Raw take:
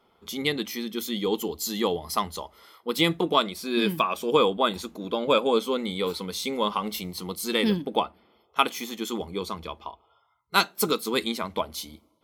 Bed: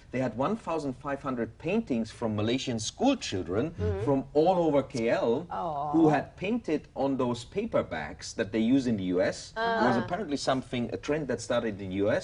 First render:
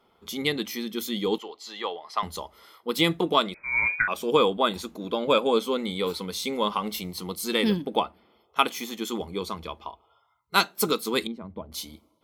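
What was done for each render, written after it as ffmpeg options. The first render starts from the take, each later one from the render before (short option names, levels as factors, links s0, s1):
-filter_complex "[0:a]asettb=1/sr,asplit=3[s0][s1][s2];[s0]atrim=end=1.384[s3];[s1]atrim=start=1.38:end=2.23,asetpts=PTS-STARTPTS,afade=t=in:d=0.004:c=qsin,afade=t=out:st=0.846:d=0.004:c=qsin,highpass=690,lowpass=3200[s4];[s2]atrim=start=2.226[s5];[s3][s4]acrossfade=d=0.004:c1=hsin:c2=qsin[s6];[s6][s5]acrossfade=d=0.004:c1=qsin:c2=hsin,asettb=1/sr,asplit=3[s7][s8][s9];[s7]atrim=end=3.544[s10];[s8]atrim=start=3.54:end=4.08,asetpts=PTS-STARTPTS,afade=t=in:d=0.004:c=qsin,afade=t=out:st=0.536:d=0.004:c=qsin,lowpass=f=2200:t=q:w=0.5098,lowpass=f=2200:t=q:w=0.6013,lowpass=f=2200:t=q:w=0.9,lowpass=f=2200:t=q:w=2.563,afreqshift=-2600[s11];[s9]atrim=start=4.076[s12];[s10][s11]acrossfade=d=0.004:c1=hsin:c2=qsin[s13];[s13][s12]acrossfade=d=0.004:c1=qsin:c2=hsin,asettb=1/sr,asplit=3[s14][s15][s16];[s14]atrim=end=11.274[s17];[s15]atrim=start=11.27:end=11.72,asetpts=PTS-STARTPTS,afade=t=in:d=0.004:c=qsin,afade=t=out:st=0.446:d=0.004:c=qsin,bandpass=f=100:t=q:w=0.53[s18];[s16]atrim=start=11.716[s19];[s17][s18]acrossfade=d=0.004:c1=hsin:c2=qsin[s20];[s20][s19]acrossfade=d=0.004:c1=qsin:c2=hsin"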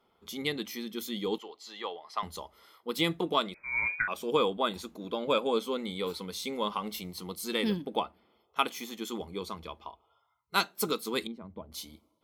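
-af "volume=0.501"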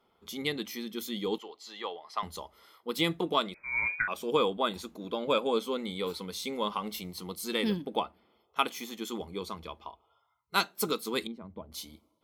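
-af anull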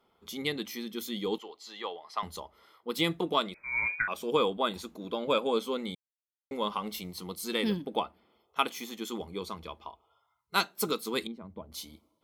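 -filter_complex "[0:a]asettb=1/sr,asplit=3[s0][s1][s2];[s0]atrim=end=2.404[s3];[s1]atrim=start=2.4:end=2.9,asetpts=PTS-STARTPTS,afade=t=in:d=0.004:c=qsin,afade=t=out:st=0.496:d=0.004:c=qsin,highshelf=f=4000:g=-8.5[s4];[s2]atrim=start=2.896[s5];[s3][s4]acrossfade=d=0.004:c1=hsin:c2=qsin[s6];[s6][s5]acrossfade=d=0.004:c1=qsin:c2=hsin,asplit=3[s7][s8][s9];[s7]atrim=end=5.95,asetpts=PTS-STARTPTS,afade=t=out:st=5.946:d=0.004:c=hsin[s10];[s8]atrim=start=5.95:end=6.51,asetpts=PTS-STARTPTS,volume=0[s11];[s9]atrim=start=6.51,asetpts=PTS-STARTPTS,afade=t=in:d=0.004:c=hsin[s12];[s10][s11][s12]concat=n=3:v=0:a=1"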